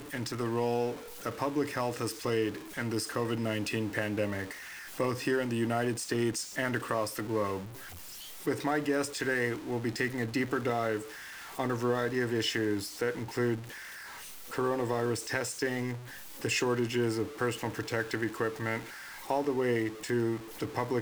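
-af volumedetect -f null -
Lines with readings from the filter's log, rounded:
mean_volume: -32.4 dB
max_volume: -15.1 dB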